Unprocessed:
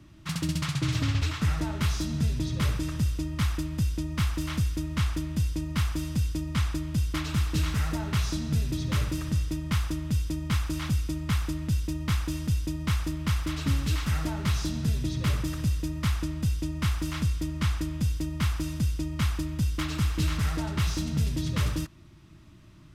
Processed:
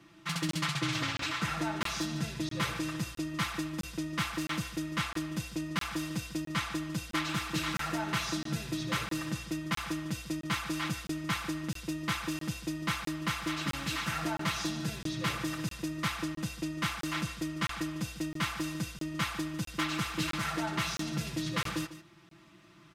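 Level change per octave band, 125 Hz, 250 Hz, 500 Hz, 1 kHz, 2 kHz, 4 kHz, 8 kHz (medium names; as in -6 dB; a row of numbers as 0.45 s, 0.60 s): -11.0 dB, -3.0 dB, -0.5 dB, +3.0 dB, +3.0 dB, +0.5 dB, -1.0 dB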